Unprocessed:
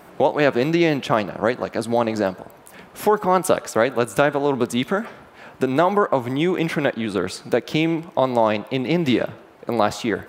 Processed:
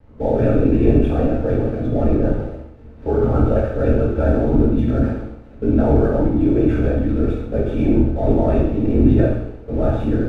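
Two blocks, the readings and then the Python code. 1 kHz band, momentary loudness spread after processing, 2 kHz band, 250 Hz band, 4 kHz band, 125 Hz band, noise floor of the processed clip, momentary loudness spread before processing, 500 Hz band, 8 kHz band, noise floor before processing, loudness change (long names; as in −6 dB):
−8.0 dB, 7 LU, −10.0 dB, +5.5 dB, below −15 dB, +10.5 dB, −40 dBFS, 7 LU, +0.5 dB, below −20 dB, −47 dBFS, +3.0 dB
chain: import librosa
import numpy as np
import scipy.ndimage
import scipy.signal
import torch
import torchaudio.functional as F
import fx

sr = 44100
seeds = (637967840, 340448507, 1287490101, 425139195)

y = fx.lpc_vocoder(x, sr, seeds[0], excitation='whisper', order=16)
y = fx.transient(y, sr, attack_db=-3, sustain_db=11)
y = scipy.signal.lfilter(np.full(43, 1.0 / 43), 1.0, y)
y = fx.backlash(y, sr, play_db=-44.5)
y = fx.echo_feedback(y, sr, ms=68, feedback_pct=49, wet_db=-9.0)
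y = fx.rev_gated(y, sr, seeds[1], gate_ms=190, shape='falling', drr_db=-4.0)
y = F.gain(torch.from_numpy(y), -1.0).numpy()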